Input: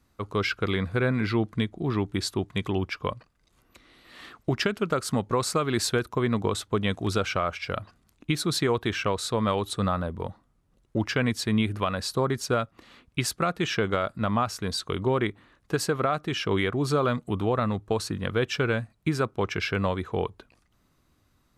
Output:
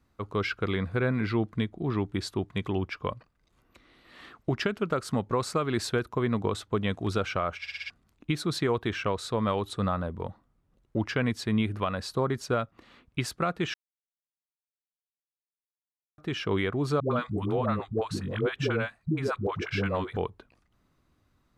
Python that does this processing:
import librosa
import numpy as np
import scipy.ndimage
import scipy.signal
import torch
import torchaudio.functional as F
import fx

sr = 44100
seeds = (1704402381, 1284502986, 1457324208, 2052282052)

y = fx.dispersion(x, sr, late='highs', ms=111.0, hz=430.0, at=(17.0, 20.17))
y = fx.edit(y, sr, fx.stutter_over(start_s=7.6, slice_s=0.06, count=5),
    fx.silence(start_s=13.74, length_s=2.44), tone=tone)
y = fx.high_shelf(y, sr, hz=4600.0, db=-8.5)
y = F.gain(torch.from_numpy(y), -2.0).numpy()